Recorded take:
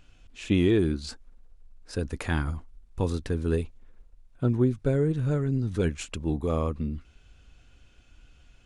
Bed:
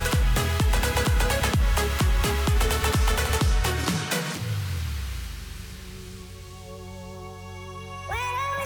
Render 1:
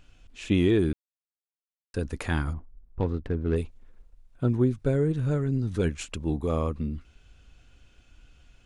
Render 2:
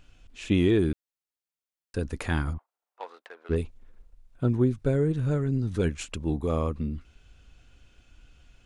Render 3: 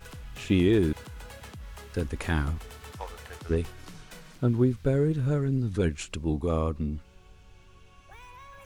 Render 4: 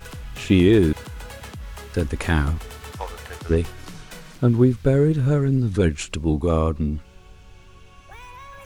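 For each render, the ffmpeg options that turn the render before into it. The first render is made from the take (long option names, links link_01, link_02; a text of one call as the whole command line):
ffmpeg -i in.wav -filter_complex "[0:a]asettb=1/sr,asplit=3[link_01][link_02][link_03];[link_01]atrim=end=2.534[link_04];[link_02]atrim=start=2.53:end=3.56,asetpts=PTS-STARTPTS,afade=type=in:duration=0.004:curve=qsin,afade=type=out:start_time=1.026:duration=0.004:curve=qsin,adynamicsmooth=sensitivity=2.5:basefreq=1100[link_05];[link_03]atrim=start=3.556[link_06];[link_04][link_05]acrossfade=duration=0.004:curve1=hsin:curve2=qsin[link_07];[link_07][link_06]acrossfade=duration=0.004:curve1=qsin:curve2=hsin,asplit=3[link_08][link_09][link_10];[link_08]atrim=end=0.93,asetpts=PTS-STARTPTS,afade=type=out:start_time=0.926:duration=0.004:curve=hsin[link_11];[link_09]atrim=start=0.93:end=1.94,asetpts=PTS-STARTPTS,volume=0[link_12];[link_10]atrim=start=1.94,asetpts=PTS-STARTPTS,afade=type=in:duration=0.004:curve=hsin[link_13];[link_11][link_12][link_13]concat=n=3:v=0:a=1" out.wav
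ffmpeg -i in.wav -filter_complex "[0:a]asplit=3[link_01][link_02][link_03];[link_01]afade=type=out:start_time=2.57:duration=0.02[link_04];[link_02]highpass=frequency=680:width=0.5412,highpass=frequency=680:width=1.3066,afade=type=in:start_time=2.57:duration=0.02,afade=type=out:start_time=3.49:duration=0.02[link_05];[link_03]afade=type=in:start_time=3.49:duration=0.02[link_06];[link_04][link_05][link_06]amix=inputs=3:normalize=0" out.wav
ffmpeg -i in.wav -i bed.wav -filter_complex "[1:a]volume=-21dB[link_01];[0:a][link_01]amix=inputs=2:normalize=0" out.wav
ffmpeg -i in.wav -af "volume=7dB" out.wav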